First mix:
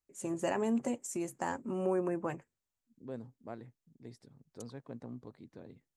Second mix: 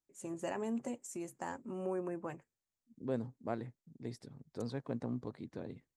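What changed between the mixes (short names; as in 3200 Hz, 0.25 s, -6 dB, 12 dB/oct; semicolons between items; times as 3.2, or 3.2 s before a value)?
first voice -6.0 dB; second voice +6.5 dB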